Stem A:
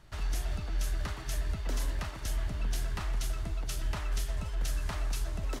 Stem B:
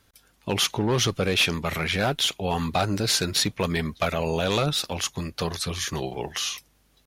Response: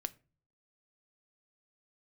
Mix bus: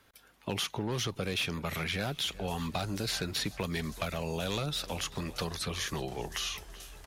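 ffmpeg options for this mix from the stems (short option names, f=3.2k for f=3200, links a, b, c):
-filter_complex "[0:a]alimiter=level_in=5dB:limit=-24dB:level=0:latency=1:release=141,volume=-5dB,adelay=2150,volume=-8dB,asplit=2[a][b];[b]volume=-10.5dB[c];[1:a]bass=f=250:g=-2,treble=f=4k:g=-12,volume=2dB,asplit=2[d][e];[e]volume=-23dB[f];[c][f]amix=inputs=2:normalize=0,aecho=0:1:379|758|1137|1516|1895|2274:1|0.41|0.168|0.0689|0.0283|0.0116[g];[a][d][g]amix=inputs=3:normalize=0,highshelf=f=7.3k:g=8.5,acrossover=split=220|4100[h][i][j];[h]acompressor=threshold=-30dB:ratio=4[k];[i]acompressor=threshold=-36dB:ratio=4[l];[j]acompressor=threshold=-37dB:ratio=4[m];[k][l][m]amix=inputs=3:normalize=0,lowshelf=f=210:g=-6.5"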